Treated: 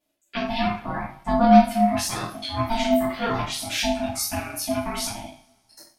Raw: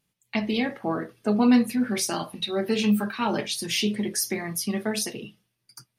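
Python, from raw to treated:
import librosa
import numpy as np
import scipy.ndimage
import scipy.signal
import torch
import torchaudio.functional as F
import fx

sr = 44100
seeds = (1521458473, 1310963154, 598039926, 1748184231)

y = fx.rev_double_slope(x, sr, seeds[0], early_s=0.41, late_s=2.0, knee_db=-28, drr_db=-9.5)
y = y * np.sin(2.0 * np.pi * 460.0 * np.arange(len(y)) / sr)
y = F.gain(torch.from_numpy(y), -6.5).numpy()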